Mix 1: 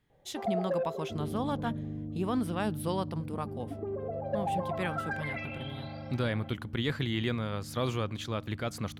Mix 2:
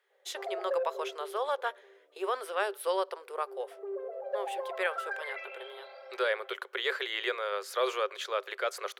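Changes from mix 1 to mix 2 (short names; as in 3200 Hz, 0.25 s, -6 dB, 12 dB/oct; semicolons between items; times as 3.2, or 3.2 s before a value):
speech +7.0 dB; second sound -5.5 dB; master: add rippled Chebyshev high-pass 380 Hz, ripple 6 dB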